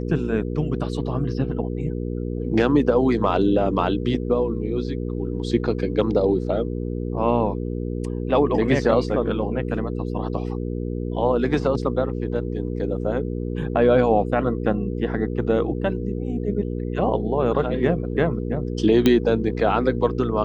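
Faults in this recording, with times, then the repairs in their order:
hum 60 Hz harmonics 8 -27 dBFS
19.06 s: pop -5 dBFS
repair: de-click; de-hum 60 Hz, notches 8

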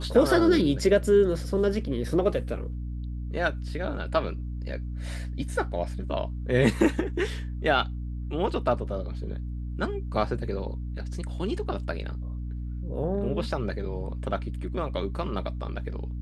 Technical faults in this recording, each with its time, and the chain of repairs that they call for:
hum 60 Hz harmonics 5 -33 dBFS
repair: de-hum 60 Hz, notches 5

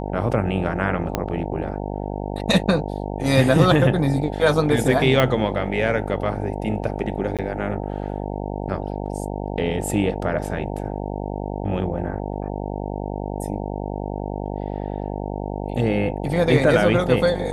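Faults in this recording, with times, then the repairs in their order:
buzz 50 Hz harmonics 18 -28 dBFS
1.15 s: pop -6 dBFS
5.20 s: pop -5 dBFS
7.37–7.39 s: dropout 17 ms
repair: de-click; de-hum 50 Hz, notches 18; interpolate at 7.37 s, 17 ms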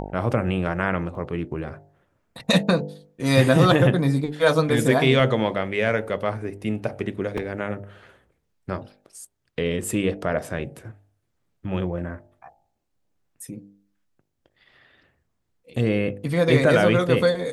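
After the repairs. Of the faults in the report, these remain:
1.15 s: pop
5.20 s: pop

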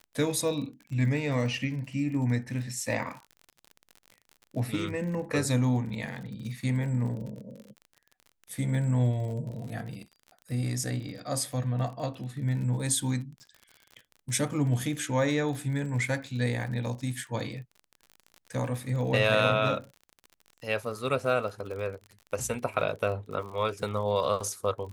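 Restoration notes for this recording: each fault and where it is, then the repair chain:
crackle 47 per s -38 dBFS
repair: de-click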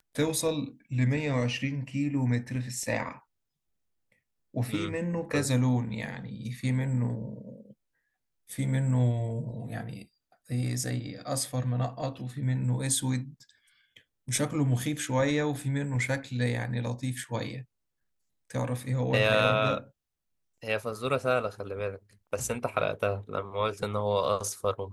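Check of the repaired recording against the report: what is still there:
nothing left

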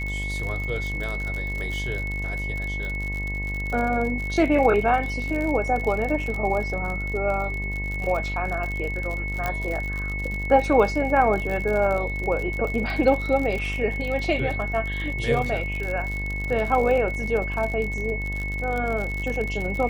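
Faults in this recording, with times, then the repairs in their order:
buzz 50 Hz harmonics 22 -30 dBFS
crackle 53 per s -28 dBFS
whine 2.2 kHz -30 dBFS
9.46 s: pop -12 dBFS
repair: de-click; de-hum 50 Hz, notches 22; band-stop 2.2 kHz, Q 30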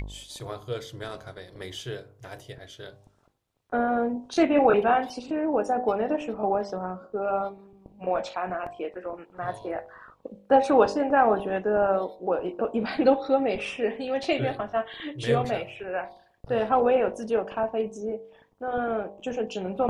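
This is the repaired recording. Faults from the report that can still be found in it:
nothing left

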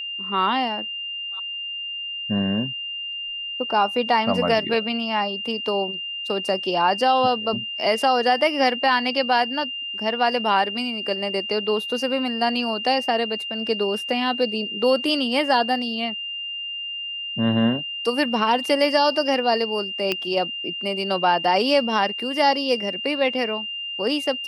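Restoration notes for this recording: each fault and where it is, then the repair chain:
whine 2.8 kHz -28 dBFS
20.12 s: pop -9 dBFS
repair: de-click; band-stop 2.8 kHz, Q 30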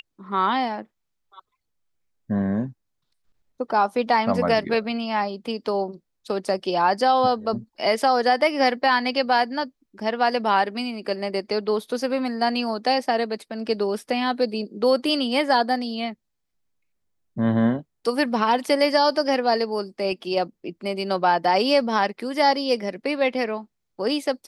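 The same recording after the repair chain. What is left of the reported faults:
nothing left

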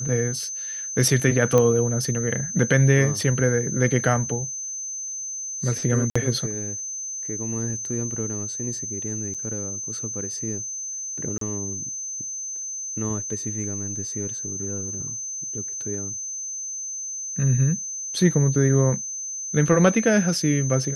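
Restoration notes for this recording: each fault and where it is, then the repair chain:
whine 6.2 kHz -29 dBFS
1.58 s: pop -8 dBFS
6.10–6.16 s: dropout 55 ms
9.34–9.35 s: dropout 6.1 ms
11.38–11.41 s: dropout 33 ms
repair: de-click; band-stop 6.2 kHz, Q 30; interpolate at 6.10 s, 55 ms; interpolate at 9.34 s, 6.1 ms; interpolate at 11.38 s, 33 ms

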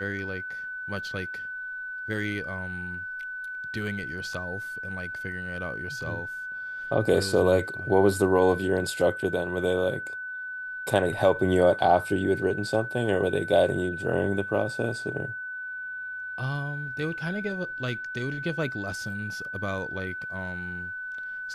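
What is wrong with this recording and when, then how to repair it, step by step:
whine 1.5 kHz -33 dBFS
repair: band-stop 1.5 kHz, Q 30

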